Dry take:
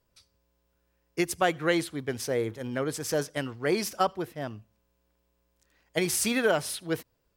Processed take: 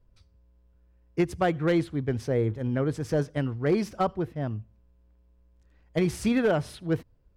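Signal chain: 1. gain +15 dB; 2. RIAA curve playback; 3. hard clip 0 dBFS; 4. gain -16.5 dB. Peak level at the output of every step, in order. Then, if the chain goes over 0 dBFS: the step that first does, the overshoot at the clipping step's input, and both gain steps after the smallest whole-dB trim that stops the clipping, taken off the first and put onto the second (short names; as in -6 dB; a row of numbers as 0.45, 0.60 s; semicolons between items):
+4.5, +5.5, 0.0, -16.5 dBFS; step 1, 5.5 dB; step 1 +9 dB, step 4 -10.5 dB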